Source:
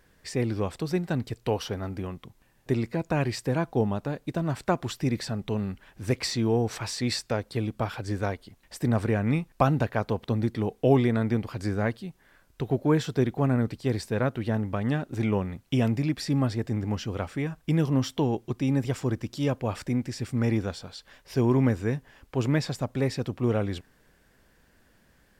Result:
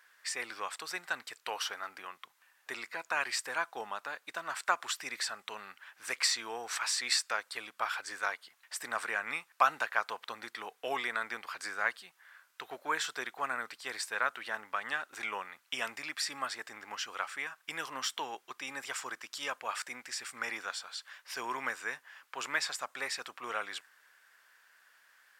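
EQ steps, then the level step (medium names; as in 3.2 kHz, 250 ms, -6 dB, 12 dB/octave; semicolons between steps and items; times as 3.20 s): dynamic bell 8.1 kHz, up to +5 dB, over -58 dBFS, Q 1.8; resonant high-pass 1.3 kHz, resonance Q 1.7; 0.0 dB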